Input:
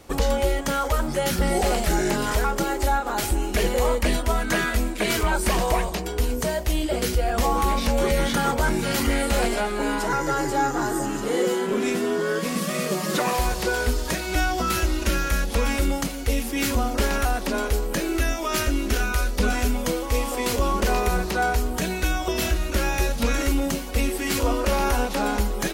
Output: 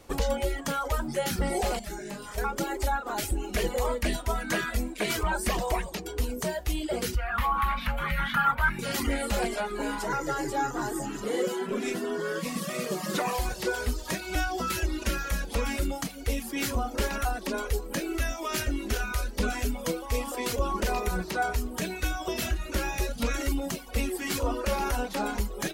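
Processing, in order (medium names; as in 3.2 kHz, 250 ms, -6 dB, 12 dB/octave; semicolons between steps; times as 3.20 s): reverb removal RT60 0.79 s; 7.16–8.79 s: FFT filter 160 Hz 0 dB, 410 Hz -19 dB, 1.3 kHz +10 dB, 3.5 kHz -1 dB, 5.8 kHz -16 dB, 8.2 kHz -16 dB, 12 kHz -3 dB; flange 0.34 Hz, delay 1.7 ms, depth 9.1 ms, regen +84%; 1.79–2.38 s: feedback comb 200 Hz, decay 0.19 s, harmonics all, mix 80%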